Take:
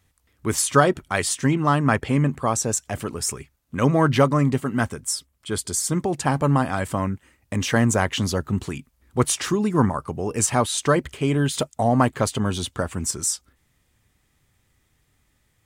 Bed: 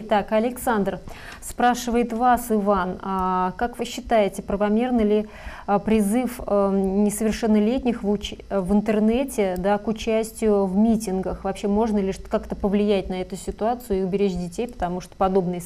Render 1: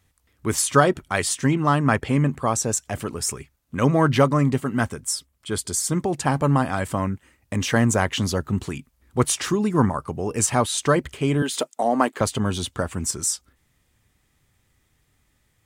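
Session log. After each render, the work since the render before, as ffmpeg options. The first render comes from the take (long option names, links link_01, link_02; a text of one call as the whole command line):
ffmpeg -i in.wav -filter_complex "[0:a]asettb=1/sr,asplit=3[link_01][link_02][link_03];[link_01]atrim=end=11.424[link_04];[link_02]atrim=start=11.42:end=12.21,asetpts=PTS-STARTPTS,afade=type=in:duration=0.004:curve=qsin,afade=type=out:start_time=0.786:duration=0.004:curve=qsin,highpass=frequency=250:width=0.5412,highpass=frequency=250:width=1.3066[link_05];[link_03]atrim=start=12.206[link_06];[link_04][link_05]acrossfade=duration=0.004:curve1=hsin:curve2=qsin[link_07];[link_07][link_06]acrossfade=duration=0.004:curve1=qsin:curve2=hsin" out.wav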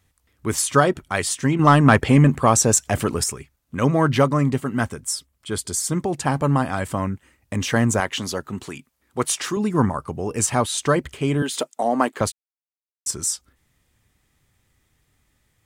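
ffmpeg -i in.wav -filter_complex "[0:a]asettb=1/sr,asplit=3[link_01][link_02][link_03];[link_01]atrim=end=1.594[link_04];[link_02]atrim=start=1.59:end=3.24,asetpts=PTS-STARTPTS,afade=type=in:duration=0.004:curve=qsin,afade=type=out:start_time=1.646:duration=0.004:curve=qsin,acontrast=83[link_05];[link_03]atrim=start=3.236[link_06];[link_04][link_05]acrossfade=duration=0.004:curve1=hsin:curve2=qsin[link_07];[link_07][link_06]acrossfade=duration=0.004:curve1=qsin:curve2=hsin,asettb=1/sr,asplit=3[link_08][link_09][link_10];[link_08]atrim=end=8.004[link_11];[link_09]atrim=start=8:end=9.57,asetpts=PTS-STARTPTS,afade=type=in:duration=0.004:curve=qsin,afade=type=out:start_time=1.566:duration=0.004:curve=qsin,highpass=frequency=330:poles=1[link_12];[link_10]atrim=start=9.566[link_13];[link_11][link_12]acrossfade=duration=0.004:curve1=hsin:curve2=qsin[link_14];[link_14][link_13]acrossfade=duration=0.004:curve1=qsin:curve2=hsin,asplit=3[link_15][link_16][link_17];[link_15]atrim=end=12.32,asetpts=PTS-STARTPTS,afade=type=out:start_time=12.316:duration=0.004:curve=hsin[link_18];[link_16]atrim=start=12.32:end=13.06,asetpts=PTS-STARTPTS,volume=0[link_19];[link_17]atrim=start=13.06,asetpts=PTS-STARTPTS,afade=type=in:duration=0.004:curve=hsin[link_20];[link_18][link_19][link_20]concat=n=3:v=0:a=1" out.wav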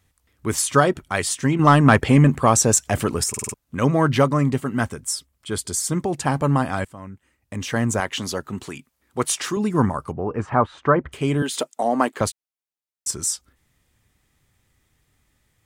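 ffmpeg -i in.wav -filter_complex "[0:a]asettb=1/sr,asplit=3[link_01][link_02][link_03];[link_01]atrim=end=10.124[link_04];[link_02]atrim=start=10.12:end=11.12,asetpts=PTS-STARTPTS,afade=type=in:duration=0.004:curve=qsin,afade=type=out:start_time=0.996:duration=0.004:curve=qsin,lowpass=frequency=1300:width_type=q:width=1.6[link_05];[link_03]atrim=start=11.116[link_06];[link_04][link_05]acrossfade=duration=0.004:curve1=hsin:curve2=qsin[link_07];[link_07][link_06]acrossfade=duration=0.004:curve1=qsin:curve2=hsin,asplit=7[link_08][link_09][link_10][link_11][link_12][link_13][link_14];[link_08]atrim=end=3.342[link_15];[link_09]atrim=start=3.288:end=3.342[link_16];[link_10]atrim=start=3.288:end=3.342[link_17];[link_11]atrim=start=3.288:end=3.342[link_18];[link_12]atrim=start=3.288:end=3.342[link_19];[link_13]atrim=start=3.538:end=6.85,asetpts=PTS-STARTPTS,afade=type=out:start_time=3.308:duration=0.004:curve=hsin:silence=0.105925[link_20];[link_14]atrim=start=6.85,asetpts=PTS-STARTPTS,afade=type=in:duration=1.43:silence=0.105925[link_21];[link_15][link_16]acrossfade=duration=0.004:curve1=hsin:curve2=hsin[link_22];[link_22][link_17]acrossfade=duration=0.004:curve1=hsin:curve2=hsin[link_23];[link_23][link_18]acrossfade=duration=0.004:curve1=hsin:curve2=hsin[link_24];[link_24][link_19]acrossfade=duration=0.004:curve1=hsin:curve2=hsin[link_25];[link_20][link_21]concat=n=2:v=0:a=1[link_26];[link_25][link_26]acrossfade=duration=0.004:curve1=hsin:curve2=hsin" out.wav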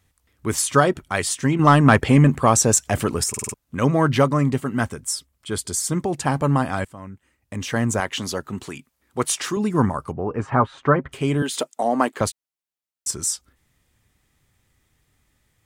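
ffmpeg -i in.wav -filter_complex "[0:a]asettb=1/sr,asplit=3[link_01][link_02][link_03];[link_01]atrim=end=10.414[link_04];[link_02]atrim=start=10.41:end=11.22,asetpts=PTS-STARTPTS,afade=type=in:duration=0.004:curve=qsin,afade=type=out:start_time=0.806:duration=0.004:curve=qsin,aecho=1:1:7.4:0.44,atrim=end_sample=35721[link_05];[link_03]atrim=start=11.216[link_06];[link_04][link_05]acrossfade=duration=0.004:curve1=hsin:curve2=qsin[link_07];[link_07][link_06]acrossfade=duration=0.004:curve1=qsin:curve2=hsin" out.wav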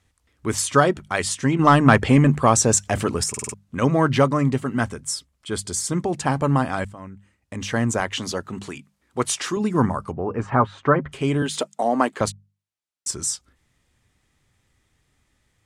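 ffmpeg -i in.wav -af "lowpass=9400,bandreject=frequency=50:width_type=h:width=6,bandreject=frequency=100:width_type=h:width=6,bandreject=frequency=150:width_type=h:width=6,bandreject=frequency=200:width_type=h:width=6" out.wav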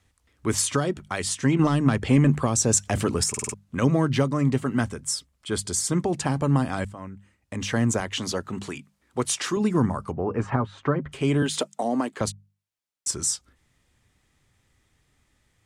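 ffmpeg -i in.wav -filter_complex "[0:a]alimiter=limit=-8.5dB:level=0:latency=1:release=463,acrossover=split=410|3000[link_01][link_02][link_03];[link_02]acompressor=threshold=-27dB:ratio=6[link_04];[link_01][link_04][link_03]amix=inputs=3:normalize=0" out.wav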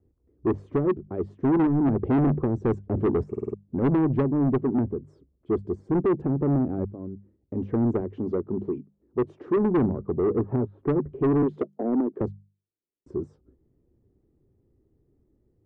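ffmpeg -i in.wav -af "lowpass=frequency=380:width_type=q:width=3.6,asoftclip=type=tanh:threshold=-17.5dB" out.wav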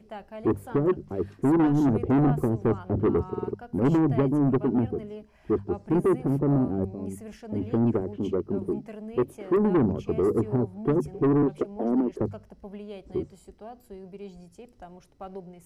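ffmpeg -i in.wav -i bed.wav -filter_complex "[1:a]volume=-20dB[link_01];[0:a][link_01]amix=inputs=2:normalize=0" out.wav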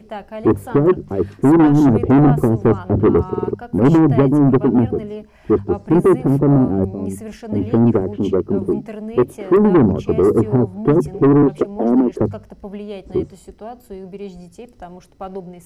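ffmpeg -i in.wav -af "volume=10dB" out.wav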